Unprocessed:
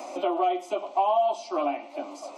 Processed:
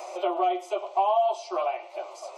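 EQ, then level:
linear-phase brick-wall high-pass 340 Hz
0.0 dB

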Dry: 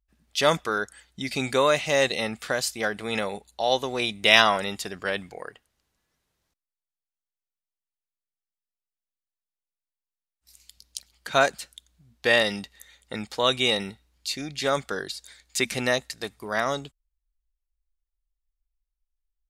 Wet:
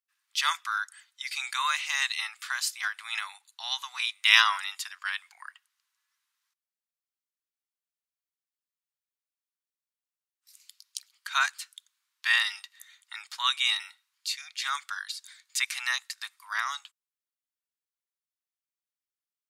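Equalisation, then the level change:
Butterworth high-pass 1,000 Hz 48 dB per octave
−1.5 dB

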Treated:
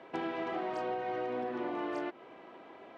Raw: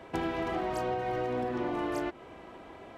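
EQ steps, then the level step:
high-pass filter 230 Hz 12 dB per octave
low-pass filter 4,200 Hz 12 dB per octave
−3.0 dB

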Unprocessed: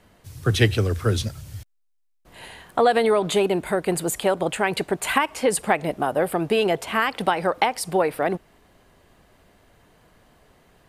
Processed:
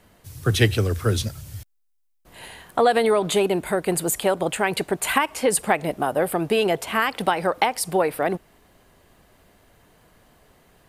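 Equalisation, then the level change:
high-shelf EQ 9,800 Hz +8 dB
0.0 dB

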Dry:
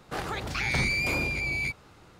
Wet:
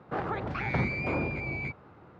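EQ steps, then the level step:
high-pass filter 91 Hz 12 dB per octave
low-pass filter 1,400 Hz 12 dB per octave
+2.5 dB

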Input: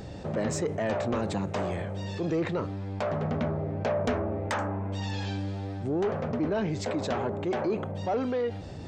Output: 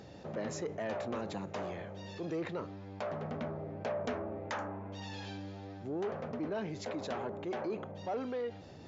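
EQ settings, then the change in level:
high-pass filter 190 Hz 6 dB per octave
linear-phase brick-wall low-pass 7,400 Hz
−7.5 dB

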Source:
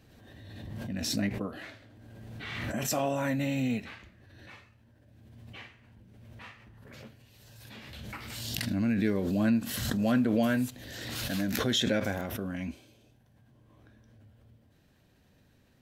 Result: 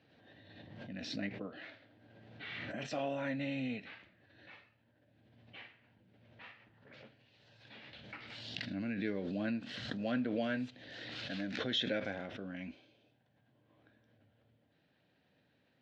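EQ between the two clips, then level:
dynamic equaliser 890 Hz, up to −4 dB, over −48 dBFS, Q 1.3
loudspeaker in its box 190–4,100 Hz, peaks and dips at 220 Hz −6 dB, 380 Hz −5 dB, 1,100 Hz −6 dB
−4.0 dB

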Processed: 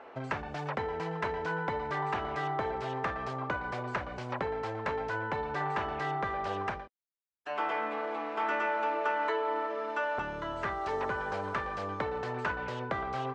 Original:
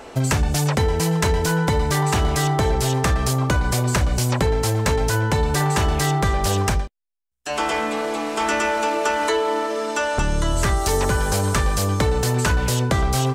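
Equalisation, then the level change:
high-pass filter 910 Hz 6 dB per octave
low-pass filter 1,700 Hz 12 dB per octave
high-frequency loss of the air 59 metres
−4.5 dB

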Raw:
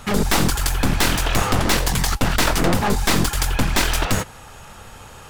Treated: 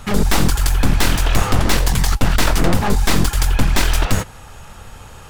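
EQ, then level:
low-shelf EQ 110 Hz +7.5 dB
0.0 dB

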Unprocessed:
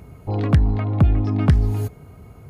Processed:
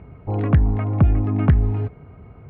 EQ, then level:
low-pass filter 2,600 Hz 24 dB per octave
0.0 dB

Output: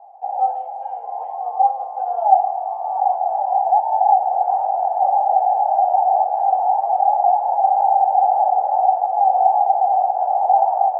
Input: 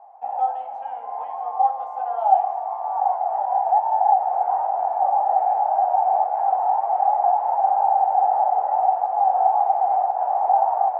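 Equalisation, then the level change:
flat-topped bell 630 Hz +12 dB 1.1 octaves
−8.5 dB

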